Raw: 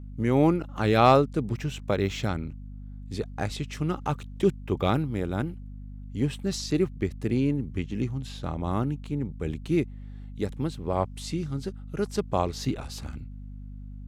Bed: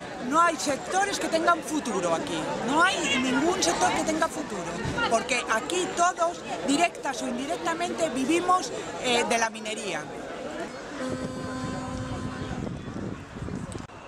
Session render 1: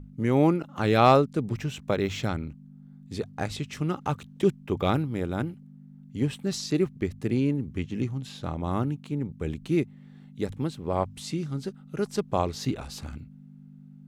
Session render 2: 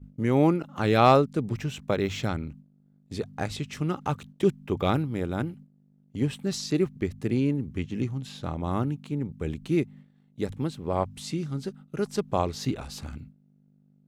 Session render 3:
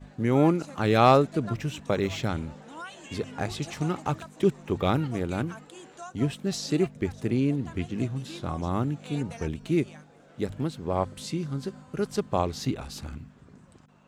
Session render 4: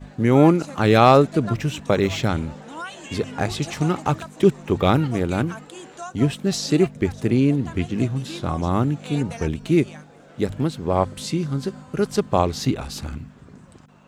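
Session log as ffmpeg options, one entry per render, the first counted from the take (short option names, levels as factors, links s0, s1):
-af "bandreject=f=50:t=h:w=6,bandreject=f=100:t=h:w=6"
-af "agate=range=0.178:threshold=0.00562:ratio=16:detection=peak"
-filter_complex "[1:a]volume=0.106[s0];[0:a][s0]amix=inputs=2:normalize=0"
-af "volume=2.24,alimiter=limit=0.794:level=0:latency=1"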